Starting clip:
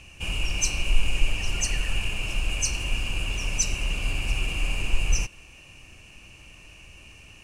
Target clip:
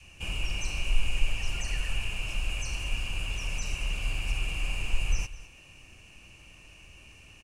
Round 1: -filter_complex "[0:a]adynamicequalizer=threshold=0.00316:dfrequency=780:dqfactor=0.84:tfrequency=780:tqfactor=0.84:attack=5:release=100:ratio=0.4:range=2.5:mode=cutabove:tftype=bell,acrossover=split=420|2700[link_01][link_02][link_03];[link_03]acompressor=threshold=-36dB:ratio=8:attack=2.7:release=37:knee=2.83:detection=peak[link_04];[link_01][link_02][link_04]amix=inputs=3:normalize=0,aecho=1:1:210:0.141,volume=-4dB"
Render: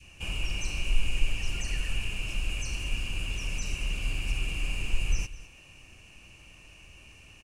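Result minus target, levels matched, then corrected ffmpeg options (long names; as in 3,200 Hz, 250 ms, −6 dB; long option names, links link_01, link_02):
1,000 Hz band −3.0 dB
-filter_complex "[0:a]adynamicequalizer=threshold=0.00316:dfrequency=290:dqfactor=0.84:tfrequency=290:tqfactor=0.84:attack=5:release=100:ratio=0.4:range=2.5:mode=cutabove:tftype=bell,acrossover=split=420|2700[link_01][link_02][link_03];[link_03]acompressor=threshold=-36dB:ratio=8:attack=2.7:release=37:knee=2.83:detection=peak[link_04];[link_01][link_02][link_04]amix=inputs=3:normalize=0,aecho=1:1:210:0.141,volume=-4dB"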